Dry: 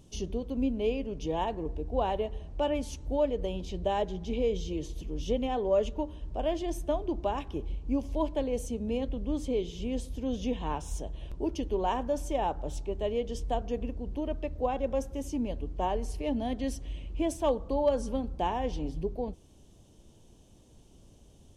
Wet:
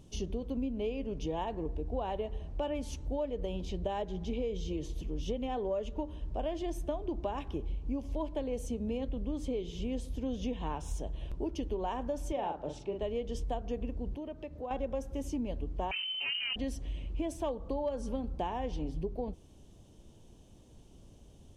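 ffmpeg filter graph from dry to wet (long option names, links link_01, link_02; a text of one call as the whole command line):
ffmpeg -i in.wav -filter_complex "[0:a]asettb=1/sr,asplit=3[link_01][link_02][link_03];[link_01]atrim=end=12.324[link_04];[link_02]atrim=start=12.32:end=13.02,asetpts=PTS-STARTPTS,afade=type=in:duration=0.004:curve=qsin,afade=type=out:start_time=0.696:duration=0.004:curve=qsin,highpass=140,lowpass=5100,asplit=2[link_05][link_06];[link_06]adelay=42,volume=-5dB[link_07];[link_05][link_07]amix=inputs=2:normalize=0,atrim=end_sample=30870[link_08];[link_03]atrim=start=13.016[link_09];[link_04][link_08]acrossfade=duration=0.004:curve1=hsin:curve2=qsin[link_10];[link_10][link_09]acrossfade=duration=0.004:curve1=qsin:curve2=hsin,asettb=1/sr,asplit=3[link_11][link_12][link_13];[link_11]atrim=end=14.144[link_14];[link_12]atrim=start=14.14:end=14.71,asetpts=PTS-STARTPTS,afade=type=in:duration=0.004:curve=qsin,afade=type=out:start_time=0.566:duration=0.004:curve=qsin,highpass=93,acompressor=threshold=-44dB:ratio=2:attack=3.2:release=140:knee=1:detection=peak[link_15];[link_13]atrim=start=14.706[link_16];[link_14][link_15]acrossfade=duration=0.004:curve1=hsin:curve2=qsin[link_17];[link_17][link_16]acrossfade=duration=0.004:curve1=qsin:curve2=hsin,asettb=1/sr,asplit=3[link_18][link_19][link_20];[link_18]atrim=end=15.914[link_21];[link_19]atrim=start=15.91:end=16.56,asetpts=PTS-STARTPTS,afade=type=in:duration=0.004:curve=qsin,afade=type=out:start_time=0.646:duration=0.004:curve=qsin,aeval=exprs='clip(val(0),-1,0.0211)':channel_layout=same,lowpass=frequency=2600:width_type=q:width=0.5098,lowpass=frequency=2600:width_type=q:width=0.6013,lowpass=frequency=2600:width_type=q:width=0.9,lowpass=frequency=2600:width_type=q:width=2.563,afreqshift=-3100[link_22];[link_20]atrim=start=16.556[link_23];[link_21][link_22]acrossfade=duration=0.004:curve1=hsin:curve2=qsin[link_24];[link_24][link_23]acrossfade=duration=0.004:curve1=qsin:curve2=hsin,bass=frequency=250:gain=1,treble=frequency=4000:gain=-3,acompressor=threshold=-31dB:ratio=6" out.wav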